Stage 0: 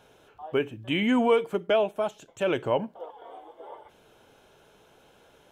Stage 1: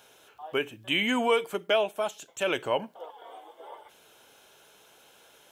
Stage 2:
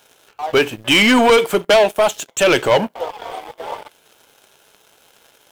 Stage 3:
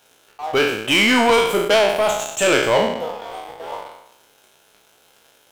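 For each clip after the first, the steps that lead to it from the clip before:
tilt EQ +3 dB/octave
waveshaping leveller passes 3; trim +6.5 dB
spectral sustain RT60 0.85 s; trim -5 dB

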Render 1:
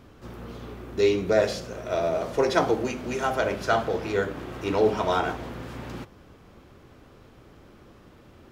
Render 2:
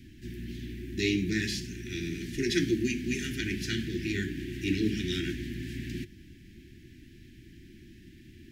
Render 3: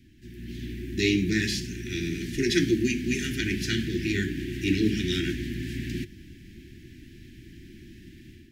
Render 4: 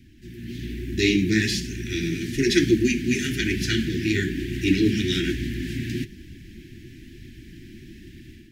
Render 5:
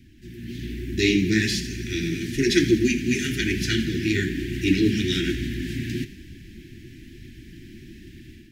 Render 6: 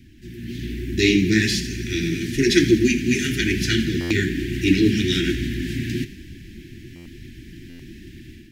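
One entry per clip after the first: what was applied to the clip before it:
Chebyshev band-stop 360–1700 Hz, order 5; trim +2 dB
level rider gain up to 10 dB; trim -5.5 dB
flange 1.1 Hz, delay 0.3 ms, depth 9.5 ms, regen -38%; trim +7.5 dB
thinning echo 82 ms, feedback 69%, level -16 dB
buffer glitch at 4.00/6.95/7.69 s, samples 512, times 8; trim +3 dB

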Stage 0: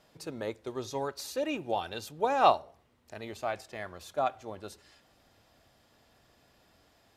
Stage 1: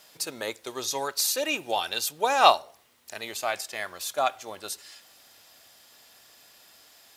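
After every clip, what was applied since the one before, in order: tilt EQ +4 dB/octave; trim +5.5 dB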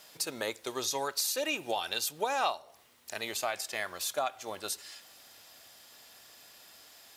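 compression 4:1, threshold -29 dBFS, peak gain reduction 15 dB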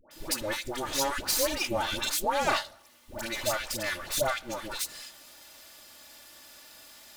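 comb filter that takes the minimum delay 3.4 ms; phase dispersion highs, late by 111 ms, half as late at 970 Hz; trim +5.5 dB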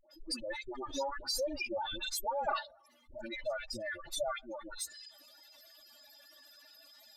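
spectral contrast enhancement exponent 3; trim -6.5 dB

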